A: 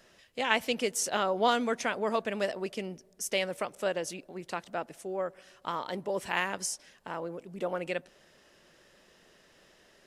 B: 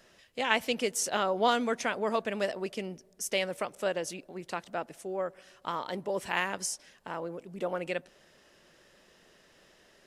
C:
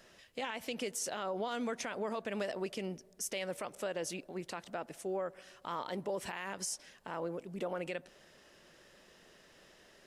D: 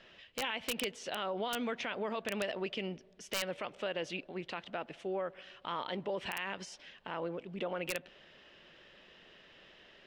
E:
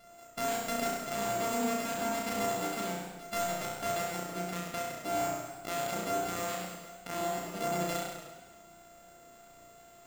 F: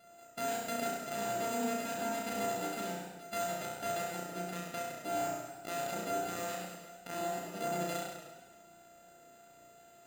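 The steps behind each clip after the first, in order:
no processing that can be heard
downward compressor 3 to 1, threshold −31 dBFS, peak gain reduction 8.5 dB; brickwall limiter −27.5 dBFS, peak gain reduction 11.5 dB
low-pass with resonance 3,100 Hz, resonance Q 2.4; wrap-around overflow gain 24 dB
samples sorted by size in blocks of 64 samples; on a send: flutter between parallel walls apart 5.7 metres, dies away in 1 s; on the sum: feedback echo with a swinging delay time 103 ms, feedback 60%, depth 152 cents, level −13 dB
notch comb filter 1,100 Hz; level −2.5 dB

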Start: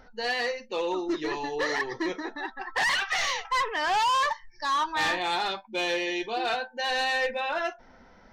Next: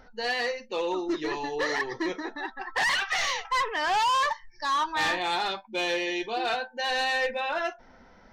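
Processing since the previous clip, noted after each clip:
no processing that can be heard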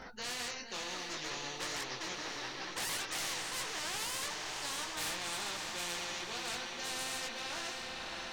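multi-voice chorus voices 4, 0.59 Hz, delay 20 ms, depth 4.7 ms
feedback delay with all-pass diffusion 594 ms, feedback 45%, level −11.5 dB
every bin compressed towards the loudest bin 4 to 1
level −7 dB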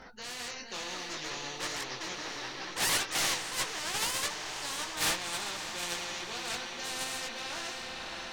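noise gate −36 dBFS, range −12 dB
automatic gain control gain up to 4 dB
in parallel at −3 dB: sine wavefolder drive 6 dB, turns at −24 dBFS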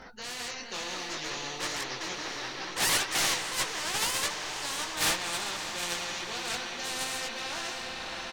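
far-end echo of a speakerphone 190 ms, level −11 dB
level +2.5 dB

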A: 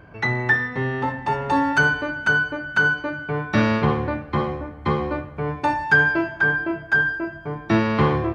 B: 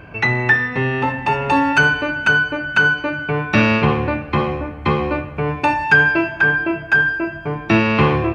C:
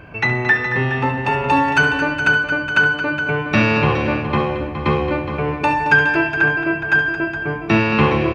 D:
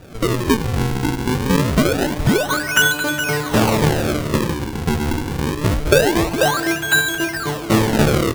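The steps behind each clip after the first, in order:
parametric band 2,600 Hz +15 dB 0.23 octaves; in parallel at −2.5 dB: downward compressor, threshold −27 dBFS, peak gain reduction 15 dB; on the sum: level +2 dB
multi-tap delay 70/223/417 ms −11.5/−10.5/−10 dB; level −1 dB
sample-and-hold swept by an LFO 41×, swing 160% 0.25 Hz; convolution reverb RT60 0.85 s, pre-delay 70 ms, DRR 18 dB

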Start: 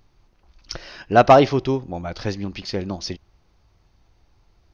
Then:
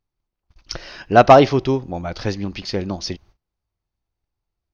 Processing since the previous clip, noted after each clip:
noise gate −50 dBFS, range −25 dB
level +2.5 dB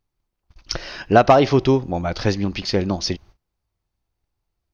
downward compressor 10 to 1, threshold −12 dBFS, peak gain reduction 8.5 dB
level +3.5 dB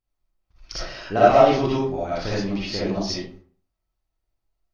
convolution reverb RT60 0.45 s, pre-delay 20 ms, DRR −9.5 dB
level −12.5 dB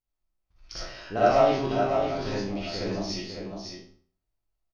peak hold with a decay on every bin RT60 0.43 s
single-tap delay 554 ms −6 dB
level −7.5 dB

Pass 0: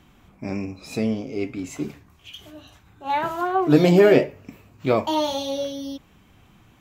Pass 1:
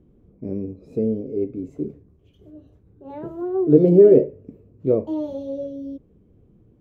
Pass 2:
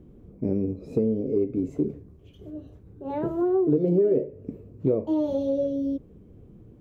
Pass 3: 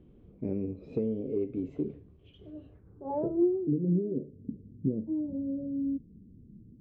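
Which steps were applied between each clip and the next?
drawn EQ curve 280 Hz 0 dB, 460 Hz +6 dB, 790 Hz −18 dB, 2,700 Hz −28 dB
downward compressor 5 to 1, threshold −26 dBFS, peak gain reduction 17 dB; level +5.5 dB
low-pass filter sweep 3,200 Hz → 230 Hz, 0:02.58–0:03.60; level −7 dB

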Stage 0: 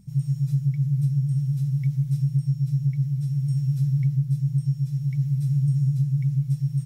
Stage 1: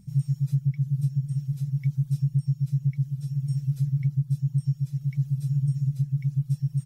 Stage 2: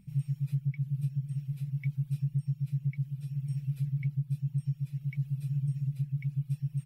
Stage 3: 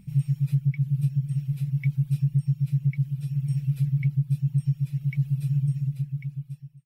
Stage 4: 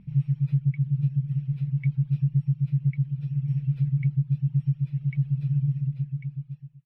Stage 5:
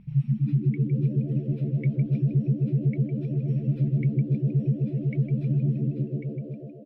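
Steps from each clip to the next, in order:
reverb reduction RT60 1.3 s
graphic EQ with 15 bands 100 Hz −6 dB, 2,500 Hz +11 dB, 6,300 Hz −11 dB; level −4.5 dB
fade-out on the ending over 1.34 s; level +7.5 dB
high-frequency loss of the air 310 metres
echo with shifted repeats 157 ms, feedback 60%, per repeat +76 Hz, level −10 dB

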